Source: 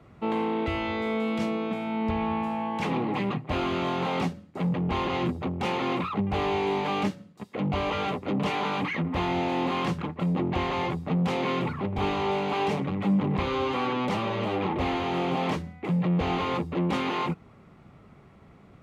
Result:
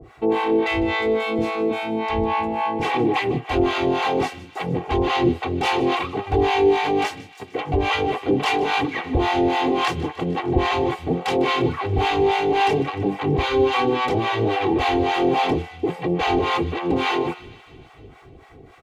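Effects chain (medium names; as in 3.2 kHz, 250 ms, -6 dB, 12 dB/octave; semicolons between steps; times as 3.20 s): peaking EQ 560 Hz +3.5 dB 0.47 oct; band-stop 1.2 kHz, Q 11; comb 2.6 ms, depth 83%; de-hum 89.66 Hz, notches 37; in parallel at -6.5 dB: saturation -27 dBFS, distortion -10 dB; on the sum: harmonic tremolo 3.6 Hz, depth 100%, crossover 660 Hz; feedback echo behind a high-pass 152 ms, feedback 67%, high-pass 1.7 kHz, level -17 dB; trim +8 dB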